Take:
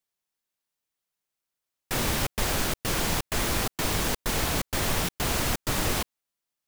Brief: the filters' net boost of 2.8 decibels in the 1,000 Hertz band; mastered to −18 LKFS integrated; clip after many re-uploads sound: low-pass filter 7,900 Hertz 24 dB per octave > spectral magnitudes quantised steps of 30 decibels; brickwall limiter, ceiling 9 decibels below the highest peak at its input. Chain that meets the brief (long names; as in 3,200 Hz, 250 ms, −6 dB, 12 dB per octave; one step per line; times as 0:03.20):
parametric band 1,000 Hz +3.5 dB
brickwall limiter −21.5 dBFS
low-pass filter 7,900 Hz 24 dB per octave
spectral magnitudes quantised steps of 30 dB
level +15.5 dB